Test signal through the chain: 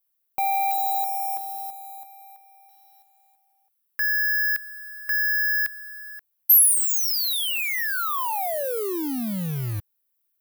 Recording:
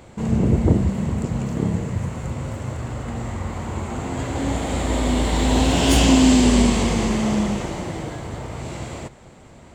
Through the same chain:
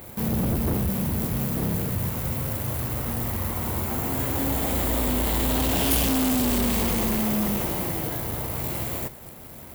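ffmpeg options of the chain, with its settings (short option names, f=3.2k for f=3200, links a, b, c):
-af "acrusher=bits=2:mode=log:mix=0:aa=0.000001,asoftclip=type=tanh:threshold=-21.5dB,aexciter=amount=8.4:drive=1.4:freq=10k"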